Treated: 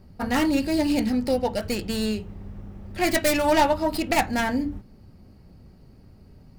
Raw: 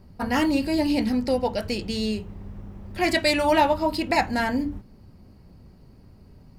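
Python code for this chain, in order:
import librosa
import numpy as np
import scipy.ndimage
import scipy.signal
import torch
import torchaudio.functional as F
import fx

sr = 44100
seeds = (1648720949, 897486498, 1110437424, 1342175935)

y = fx.tracing_dist(x, sr, depth_ms=0.3)
y = fx.notch(y, sr, hz=1000.0, q=12.0)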